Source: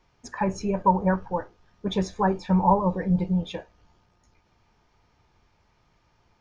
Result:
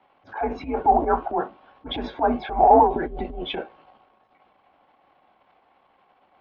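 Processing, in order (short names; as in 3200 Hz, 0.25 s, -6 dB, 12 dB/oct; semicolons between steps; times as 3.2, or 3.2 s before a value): transient shaper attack -10 dB, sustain +7 dB; ten-band EQ 125 Hz -12 dB, 250 Hz -8 dB, 1000 Hz +6 dB, 2000 Hz -4 dB; mistuned SSB -140 Hz 210–3500 Hz; gain +5.5 dB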